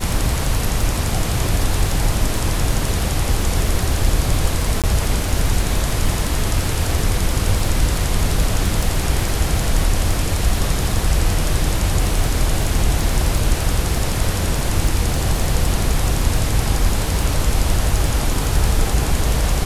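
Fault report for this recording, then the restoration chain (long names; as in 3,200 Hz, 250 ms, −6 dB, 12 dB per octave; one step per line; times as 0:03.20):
surface crackle 33 per second −20 dBFS
0:04.82–0:04.84: drop-out 17 ms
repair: click removal
repair the gap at 0:04.82, 17 ms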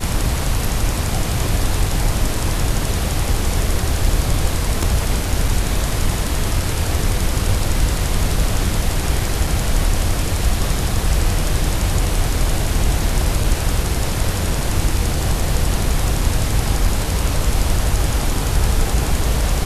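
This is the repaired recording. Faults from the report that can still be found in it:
none of them is left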